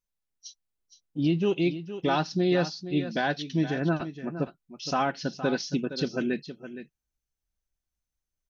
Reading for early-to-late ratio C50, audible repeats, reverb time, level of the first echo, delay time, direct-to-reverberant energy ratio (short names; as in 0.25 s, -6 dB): none, 1, none, -12.0 dB, 0.466 s, none